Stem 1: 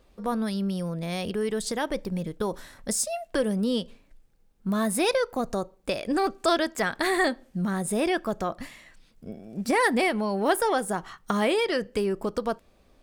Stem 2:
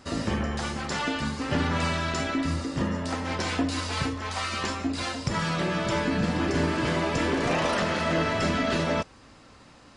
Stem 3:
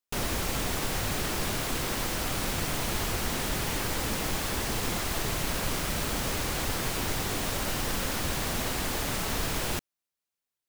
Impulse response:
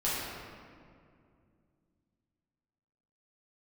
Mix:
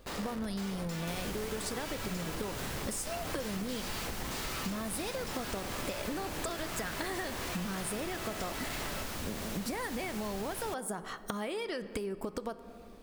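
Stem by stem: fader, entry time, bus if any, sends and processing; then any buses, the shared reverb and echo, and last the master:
+3.0 dB, 0.00 s, send −22.5 dB, high-shelf EQ 11,000 Hz +7 dB; downward compressor 6 to 1, threshold −33 dBFS, peak gain reduction 15 dB
+1.5 dB, 0.00 s, send −13 dB, high-pass filter 360 Hz 12 dB per octave; first difference; comparator with hysteresis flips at −41.5 dBFS
+1.0 dB, 0.95 s, no send, automatic ducking −9 dB, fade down 1.80 s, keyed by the first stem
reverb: on, RT60 2.3 s, pre-delay 5 ms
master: downward compressor, threshold −33 dBFS, peak gain reduction 7.5 dB

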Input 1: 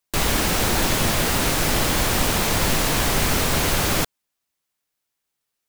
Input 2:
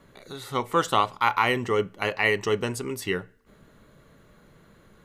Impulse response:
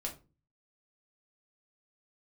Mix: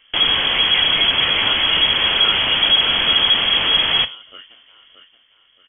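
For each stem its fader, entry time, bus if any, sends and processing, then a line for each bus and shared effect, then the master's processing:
+1.5 dB, 0.00 s, send −8 dB, no echo send, no processing
+1.5 dB, 0.00 s, no send, echo send −5.5 dB, brickwall limiter −14 dBFS, peak gain reduction 8 dB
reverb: on, RT60 0.30 s, pre-delay 5 ms
echo: repeating echo 625 ms, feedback 36%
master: soft clipping −9 dBFS, distortion −18 dB; voice inversion scrambler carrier 3,300 Hz

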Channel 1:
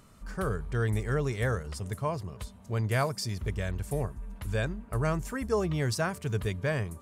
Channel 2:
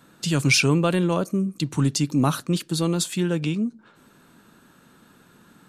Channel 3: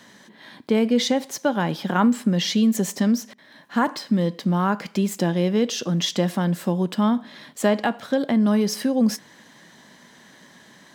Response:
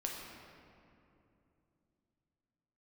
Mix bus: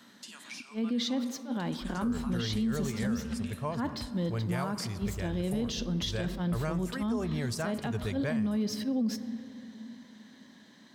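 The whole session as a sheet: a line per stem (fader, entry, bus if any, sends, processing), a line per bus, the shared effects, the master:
−4.5 dB, 1.60 s, send −15 dB, no processing
−6.0 dB, 0.00 s, send −10.5 dB, high-pass filter 850 Hz 24 dB per octave; downward compressor 2.5 to 1, threshold −40 dBFS, peak gain reduction 16 dB; automatic ducking −9 dB, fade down 0.40 s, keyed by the third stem
−12.5 dB, 0.00 s, send −11.5 dB, graphic EQ with 15 bands 250 Hz +9 dB, 4,000 Hz +6 dB, 10,000 Hz −5 dB; level that may rise only so fast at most 360 dB per second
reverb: on, RT60 2.8 s, pre-delay 7 ms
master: brickwall limiter −23.5 dBFS, peak gain reduction 10.5 dB

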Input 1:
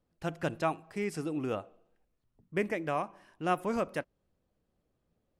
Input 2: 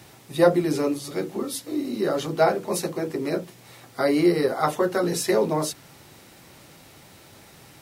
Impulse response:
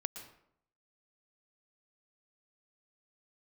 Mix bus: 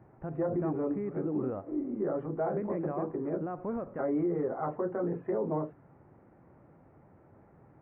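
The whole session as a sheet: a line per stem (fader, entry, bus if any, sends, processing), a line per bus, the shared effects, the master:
+3.0 dB, 0.00 s, no send, brickwall limiter −28.5 dBFS, peak gain reduction 11.5 dB
−6.0 dB, 0.00 s, no send, no processing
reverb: not used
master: Gaussian smoothing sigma 6.7 samples; brickwall limiter −23 dBFS, peak gain reduction 11.5 dB

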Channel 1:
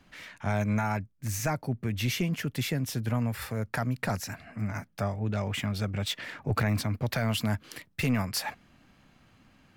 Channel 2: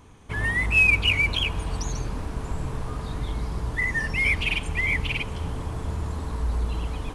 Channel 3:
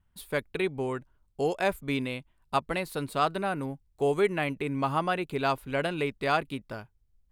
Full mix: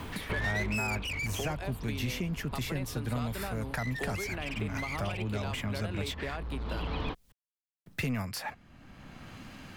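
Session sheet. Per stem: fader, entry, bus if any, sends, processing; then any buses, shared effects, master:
−5.0 dB, 0.00 s, muted 0:06.36–0:07.86, no send, no processing
−1.0 dB, 0.00 s, no send, Butterworth low-pass 4,400 Hz; hard clipping −22.5 dBFS, distortion −9 dB; automatic ducking −14 dB, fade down 1.65 s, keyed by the first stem
−11.5 dB, 0.00 s, no send, brickwall limiter −20 dBFS, peak gain reduction 7 dB; multiband upward and downward compressor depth 100%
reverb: not used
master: multiband upward and downward compressor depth 70%

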